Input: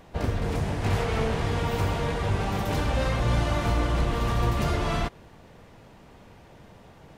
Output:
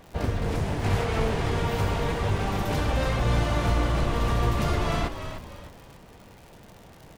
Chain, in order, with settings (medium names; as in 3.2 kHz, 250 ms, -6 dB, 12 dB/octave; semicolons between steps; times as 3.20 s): crackle 120 per s -39 dBFS; frequency-shifting echo 302 ms, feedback 38%, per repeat -58 Hz, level -9 dB